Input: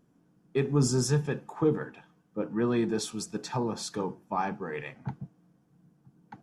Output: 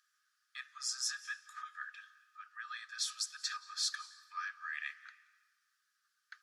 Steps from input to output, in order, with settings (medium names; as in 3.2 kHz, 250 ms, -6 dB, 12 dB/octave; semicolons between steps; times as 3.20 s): compression 2:1, threshold -38 dBFS, peak gain reduction 10.5 dB; rippled Chebyshev high-pass 1.2 kHz, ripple 9 dB; on a send: reverberation RT60 1.5 s, pre-delay 164 ms, DRR 17 dB; on the sum: trim +9 dB